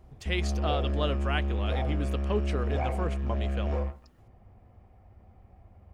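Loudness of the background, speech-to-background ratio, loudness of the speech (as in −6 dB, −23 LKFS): −31.0 LKFS, −3.5 dB, −34.5 LKFS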